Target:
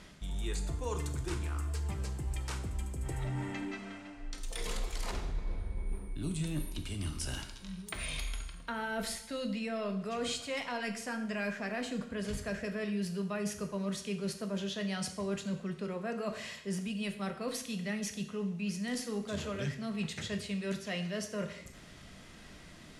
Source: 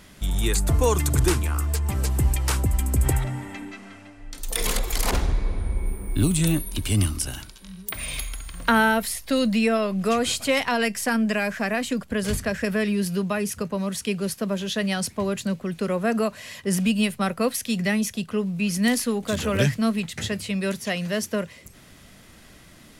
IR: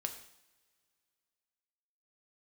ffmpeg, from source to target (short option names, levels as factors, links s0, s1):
-filter_complex "[0:a]lowpass=7600,areverse,acompressor=threshold=0.0282:ratio=6,areverse[s0];[1:a]atrim=start_sample=2205[s1];[s0][s1]afir=irnorm=-1:irlink=0,volume=0.75"